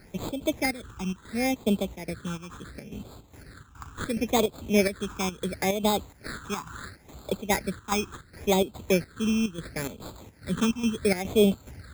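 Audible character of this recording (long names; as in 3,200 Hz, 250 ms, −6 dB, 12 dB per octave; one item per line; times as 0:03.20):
aliases and images of a low sample rate 2,900 Hz, jitter 0%
chopped level 2.4 Hz, depth 65%, duty 70%
phaser sweep stages 8, 0.72 Hz, lowest notch 570–1,800 Hz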